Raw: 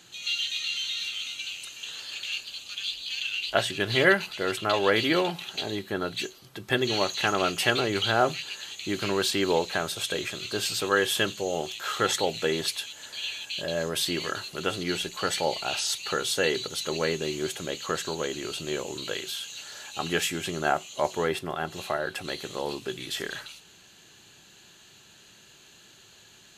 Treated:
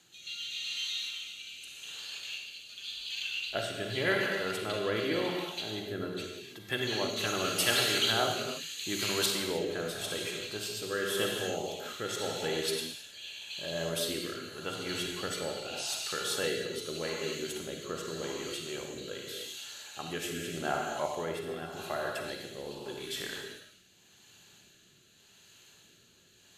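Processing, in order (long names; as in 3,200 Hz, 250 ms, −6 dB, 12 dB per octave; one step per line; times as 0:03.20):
0:07.16–0:09.26: high-shelf EQ 3,300 Hz +11.5 dB
convolution reverb, pre-delay 36 ms, DRR 0.5 dB
rotating-speaker cabinet horn 0.85 Hz
high-shelf EQ 11,000 Hz +8.5 dB
level −7 dB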